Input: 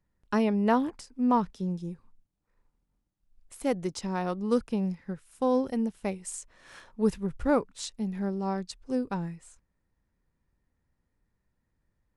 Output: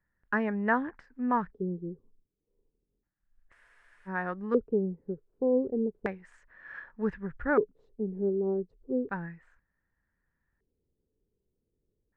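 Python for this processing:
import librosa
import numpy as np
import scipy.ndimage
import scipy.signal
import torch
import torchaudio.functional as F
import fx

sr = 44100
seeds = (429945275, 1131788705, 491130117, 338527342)

y = fx.filter_lfo_lowpass(x, sr, shape='square', hz=0.33, low_hz=420.0, high_hz=1700.0, q=6.4)
y = fx.spec_freeze(y, sr, seeds[0], at_s=3.55, hold_s=0.53)
y = y * 10.0 ** (-5.5 / 20.0)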